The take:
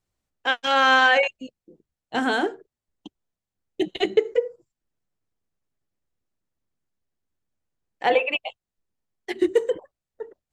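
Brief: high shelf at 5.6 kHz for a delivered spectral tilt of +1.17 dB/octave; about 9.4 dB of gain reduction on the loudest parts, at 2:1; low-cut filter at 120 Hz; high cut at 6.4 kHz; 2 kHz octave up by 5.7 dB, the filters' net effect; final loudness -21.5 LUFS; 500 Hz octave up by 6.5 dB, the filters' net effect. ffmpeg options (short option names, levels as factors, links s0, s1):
-af "highpass=120,lowpass=6400,equalizer=f=500:t=o:g=7,equalizer=f=2000:t=o:g=6.5,highshelf=f=5600:g=7.5,acompressor=threshold=0.0562:ratio=2,volume=1.58"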